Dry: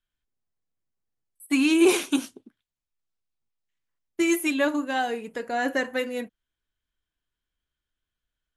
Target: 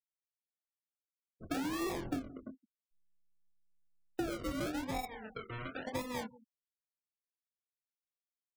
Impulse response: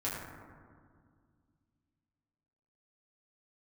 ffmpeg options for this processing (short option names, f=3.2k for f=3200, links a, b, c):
-filter_complex "[0:a]acrusher=samples=41:mix=1:aa=0.000001:lfo=1:lforange=24.6:lforate=0.95,equalizer=f=1.4k:w=7.2:g=3,asplit=2[a][b];[b]adelay=23,volume=-5dB[c];[a][c]amix=inputs=2:normalize=0,asoftclip=type=tanh:threshold=-15dB,asettb=1/sr,asplit=3[d][e][f];[d]atrim=end=2.054[g];[e]atrim=start=2.05:end=4.3,asetpts=PTS-STARTPTS,afade=t=in:d=0.004:c=qsin,afade=t=out:st=2.246:d=0.004:c=qsin,lowshelf=f=460:g=10.5[h];[f]atrim=start=4.296[i];[g][h]acrossfade=d=0.004:c1=hsin:c2=qsin[j];[j][i]acrossfade=d=0.004:c1=qsin:c2=hsin,asettb=1/sr,asplit=3[k][l][m];[k]atrim=end=5.054[n];[l]atrim=start=5.05:end=5.87,asetpts=PTS-STARTPTS,afade=t=in:d=0.004:c=qsin,afade=t=out:st=0.816:d=0.004:c=qsin,acrossover=split=1100|3300[o][p][q];[o]acompressor=threshold=-44dB:ratio=4[r];[p]acompressor=threshold=-42dB:ratio=4[s];[q]acompressor=threshold=-60dB:ratio=4[t];[r][s][t]amix=inputs=3:normalize=0[u];[m]atrim=start=5.866[v];[n][u]acrossfade=d=0.004:c1=hsin:c2=qsin[w];[w][v]acrossfade=d=0.004:c1=qsin:c2=hsin,asplit=2[x][y];[y]adelay=167,lowpass=f=860:p=1,volume=-22.5dB,asplit=2[z][aa];[aa]adelay=167,lowpass=f=860:p=1,volume=0.3[ab];[x][z][ab]amix=inputs=3:normalize=0,afftfilt=real='re*gte(hypot(re,im),0.00708)':imag='im*gte(hypot(re,im),0.00708)':win_size=1024:overlap=0.75,acompressor=threshold=-32dB:ratio=10,volume=-2.5dB"